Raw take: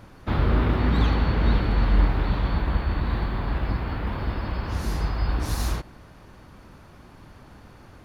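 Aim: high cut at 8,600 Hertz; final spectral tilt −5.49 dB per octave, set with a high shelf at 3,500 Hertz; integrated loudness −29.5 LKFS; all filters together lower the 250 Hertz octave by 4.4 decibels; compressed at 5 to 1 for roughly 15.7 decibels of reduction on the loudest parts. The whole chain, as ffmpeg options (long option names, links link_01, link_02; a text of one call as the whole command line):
ffmpeg -i in.wav -af "lowpass=8600,equalizer=frequency=250:width_type=o:gain=-6,highshelf=frequency=3500:gain=5.5,acompressor=threshold=-32dB:ratio=5,volume=7.5dB" out.wav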